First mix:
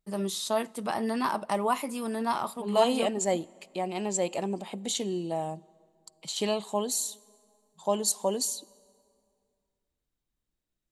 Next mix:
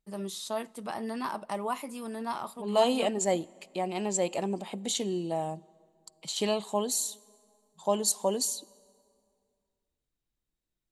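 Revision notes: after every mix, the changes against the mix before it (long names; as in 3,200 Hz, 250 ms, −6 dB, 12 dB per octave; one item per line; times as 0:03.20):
first voice −5.5 dB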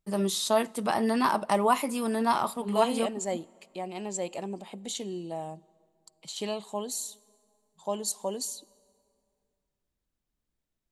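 first voice +9.0 dB
second voice −4.5 dB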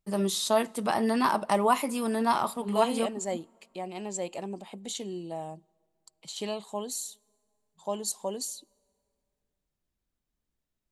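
second voice: send −8.5 dB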